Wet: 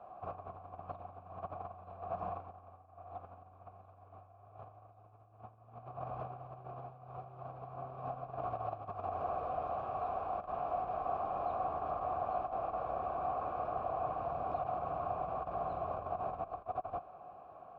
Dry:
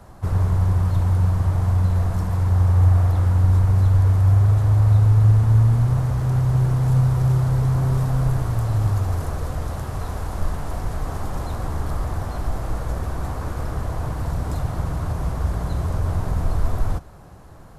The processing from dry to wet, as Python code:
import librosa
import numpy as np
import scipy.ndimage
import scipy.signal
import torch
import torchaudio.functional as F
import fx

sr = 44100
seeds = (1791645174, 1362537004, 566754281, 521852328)

y = fx.high_shelf(x, sr, hz=3600.0, db=-9.5)
y = fx.over_compress(y, sr, threshold_db=-22.0, ratio=-0.5)
y = fx.vowel_filter(y, sr, vowel='a')
y = fx.air_absorb(y, sr, metres=180.0)
y = y * librosa.db_to_amplitude(2.5)